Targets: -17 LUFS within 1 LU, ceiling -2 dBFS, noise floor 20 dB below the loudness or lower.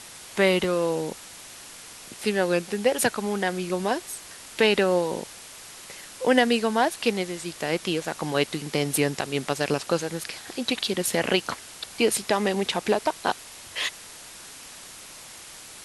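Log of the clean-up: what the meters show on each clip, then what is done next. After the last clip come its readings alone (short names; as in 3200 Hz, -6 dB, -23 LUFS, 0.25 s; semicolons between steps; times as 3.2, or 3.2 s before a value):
dropouts 1; longest dropout 1.4 ms; noise floor -44 dBFS; noise floor target -46 dBFS; loudness -25.5 LUFS; peak -5.0 dBFS; loudness target -17.0 LUFS
-> interpolate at 0.64, 1.4 ms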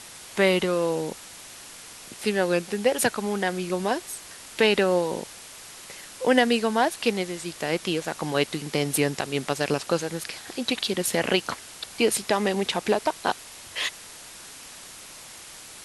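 dropouts 0; noise floor -44 dBFS; noise floor target -46 dBFS
-> noise print and reduce 6 dB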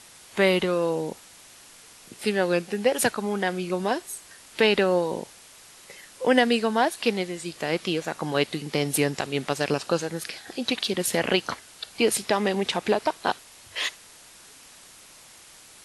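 noise floor -50 dBFS; loudness -25.5 LUFS; peak -5.5 dBFS; loudness target -17.0 LUFS
-> gain +8.5 dB; limiter -2 dBFS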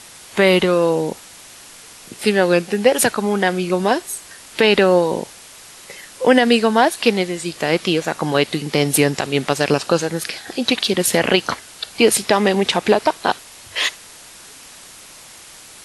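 loudness -17.5 LUFS; peak -2.0 dBFS; noise floor -41 dBFS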